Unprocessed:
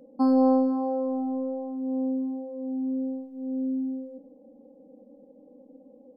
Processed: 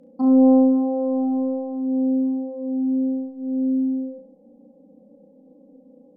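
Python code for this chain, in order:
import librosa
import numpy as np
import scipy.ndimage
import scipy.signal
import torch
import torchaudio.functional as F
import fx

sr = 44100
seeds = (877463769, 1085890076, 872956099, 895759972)

p1 = fx.env_lowpass_down(x, sr, base_hz=700.0, full_db=-23.0)
p2 = fx.peak_eq(p1, sr, hz=180.0, db=10.0, octaves=0.56)
p3 = p2 + fx.room_flutter(p2, sr, wall_m=5.9, rt60_s=0.43, dry=0)
y = F.gain(torch.from_numpy(p3), -2.0).numpy()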